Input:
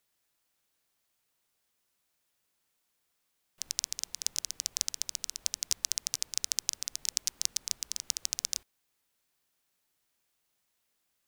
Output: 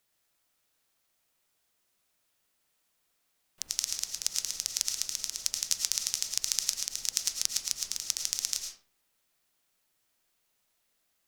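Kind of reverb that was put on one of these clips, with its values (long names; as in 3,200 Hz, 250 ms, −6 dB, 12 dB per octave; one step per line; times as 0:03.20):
comb and all-pass reverb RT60 0.44 s, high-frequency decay 0.7×, pre-delay 65 ms, DRR 4 dB
level +1.5 dB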